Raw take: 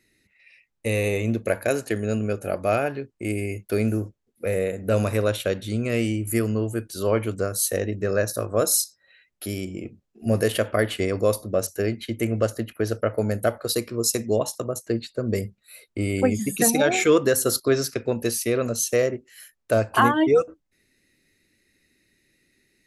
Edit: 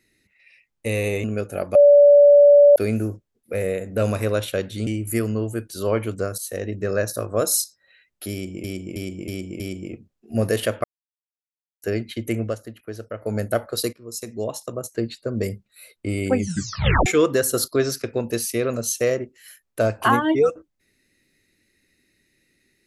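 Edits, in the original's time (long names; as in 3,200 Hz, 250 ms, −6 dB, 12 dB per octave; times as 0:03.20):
0:01.24–0:02.16: remove
0:02.67–0:03.68: beep over 577 Hz −7.5 dBFS
0:05.79–0:06.07: remove
0:07.58–0:07.95: fade in, from −12 dB
0:09.52–0:09.84: repeat, 5 plays
0:10.76–0:11.74: silence
0:12.32–0:13.28: duck −9 dB, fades 0.17 s
0:13.85–0:14.89: fade in, from −18.5 dB
0:16.32: tape stop 0.66 s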